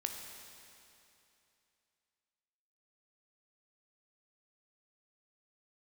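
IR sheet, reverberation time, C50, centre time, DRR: 2.8 s, 4.0 dB, 73 ms, 3.0 dB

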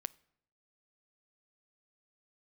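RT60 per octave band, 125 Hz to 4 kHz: 0.85 s, 0.80 s, 0.75 s, 0.70 s, 0.65 s, 0.55 s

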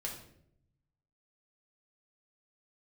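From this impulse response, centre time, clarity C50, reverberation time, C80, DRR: 28 ms, 6.0 dB, 0.70 s, 9.5 dB, -1.5 dB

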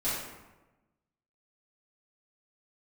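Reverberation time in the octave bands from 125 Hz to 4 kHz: 1.4 s, 1.3 s, 1.1 s, 1.1 s, 0.90 s, 0.65 s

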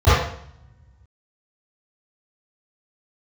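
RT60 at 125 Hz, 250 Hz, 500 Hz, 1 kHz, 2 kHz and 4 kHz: 1.9 s, 1.4 s, 0.60 s, 0.65 s, 0.65 s, 0.60 s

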